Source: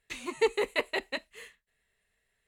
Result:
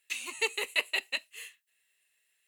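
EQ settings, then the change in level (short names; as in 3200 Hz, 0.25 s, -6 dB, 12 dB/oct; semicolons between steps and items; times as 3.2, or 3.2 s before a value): tilt +4.5 dB/oct; bell 2700 Hz +9 dB 0.25 oct; -6.0 dB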